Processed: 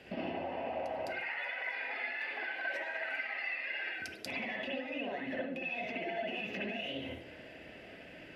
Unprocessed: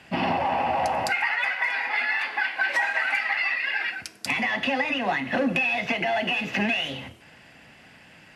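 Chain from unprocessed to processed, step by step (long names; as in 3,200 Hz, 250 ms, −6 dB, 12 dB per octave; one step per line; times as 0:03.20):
graphic EQ with 10 bands 125 Hz −3 dB, 500 Hz +11 dB, 1,000 Hz −10 dB, 8,000 Hz −8 dB
downward compressor 12 to 1, threshold −35 dBFS, peak gain reduction 21.5 dB
convolution reverb, pre-delay 58 ms, DRR −3 dB
level −4.5 dB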